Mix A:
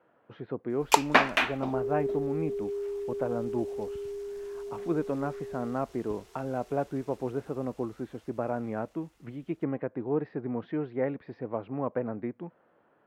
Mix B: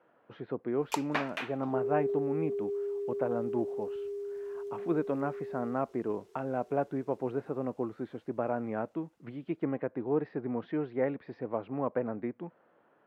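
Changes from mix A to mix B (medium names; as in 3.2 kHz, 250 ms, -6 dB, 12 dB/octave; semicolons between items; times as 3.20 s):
first sound -12.0 dB; master: add high-pass 140 Hz 6 dB/octave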